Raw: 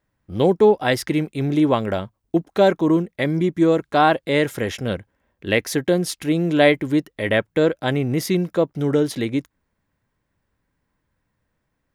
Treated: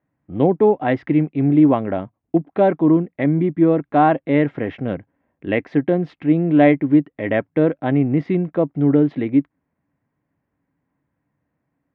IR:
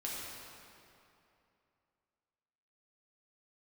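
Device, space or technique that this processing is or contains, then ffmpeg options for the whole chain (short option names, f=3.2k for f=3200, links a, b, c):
bass cabinet: -af "highpass=82,equalizer=f=150:t=q:w=4:g=7,equalizer=f=280:t=q:w=4:g=10,equalizer=f=710:t=q:w=4:g=5,equalizer=f=1.5k:t=q:w=4:g=-3,lowpass=f=2.4k:w=0.5412,lowpass=f=2.4k:w=1.3066,volume=-2dB"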